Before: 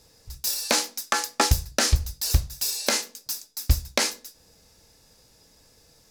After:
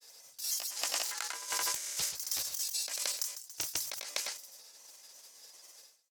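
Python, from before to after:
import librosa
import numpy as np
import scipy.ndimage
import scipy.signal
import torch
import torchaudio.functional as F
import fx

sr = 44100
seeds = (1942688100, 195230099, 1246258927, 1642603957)

p1 = fx.pitch_trill(x, sr, semitones=3.0, every_ms=193)
p2 = scipy.signal.sosfilt(scipy.signal.butter(2, 590.0, 'highpass', fs=sr, output='sos'), p1)
p3 = fx.level_steps(p2, sr, step_db=13)
p4 = p2 + (p3 * 10.0 ** (2.0 / 20.0))
p5 = fx.high_shelf(p4, sr, hz=2500.0, db=8.5)
p6 = p5 + fx.echo_single(p5, sr, ms=219, db=-10.0, dry=0)
p7 = p6 * (1.0 - 0.32 / 2.0 + 0.32 / 2.0 * np.cos(2.0 * np.pi * 11.0 * (np.arange(len(p6)) / sr)))
p8 = fx.granulator(p7, sr, seeds[0], grain_ms=100.0, per_s=20.0, spray_ms=100.0, spread_st=0)
p9 = fx.over_compress(p8, sr, threshold_db=-27.0, ratio=-1.0)
p10 = fx.end_taper(p9, sr, db_per_s=110.0)
y = p10 * 10.0 ** (-9.0 / 20.0)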